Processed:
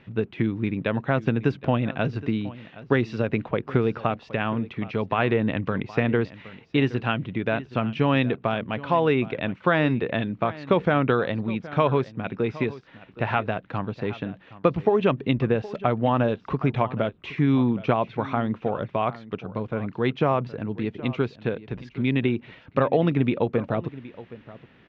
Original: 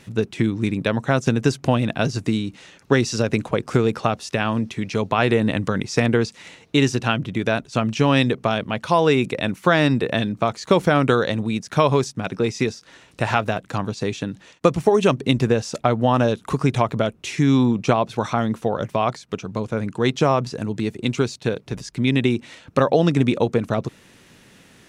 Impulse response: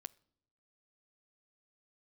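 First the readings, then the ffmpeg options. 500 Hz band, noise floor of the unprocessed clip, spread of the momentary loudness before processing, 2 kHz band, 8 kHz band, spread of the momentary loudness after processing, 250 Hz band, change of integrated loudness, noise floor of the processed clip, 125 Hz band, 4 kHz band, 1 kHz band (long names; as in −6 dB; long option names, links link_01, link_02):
−4.0 dB, −52 dBFS, 9 LU, −4.0 dB, below −25 dB, 9 LU, −4.0 dB, −4.0 dB, −54 dBFS, −4.0 dB, −9.0 dB, −4.0 dB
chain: -filter_complex "[0:a]lowpass=frequency=3100:width=0.5412,lowpass=frequency=3100:width=1.3066,asplit=2[link_01][link_02];[link_02]aecho=0:1:769:0.133[link_03];[link_01][link_03]amix=inputs=2:normalize=0,volume=-4dB"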